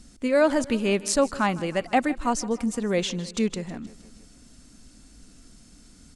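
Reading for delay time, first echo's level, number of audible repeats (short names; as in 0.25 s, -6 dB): 0.157 s, -19.0 dB, 4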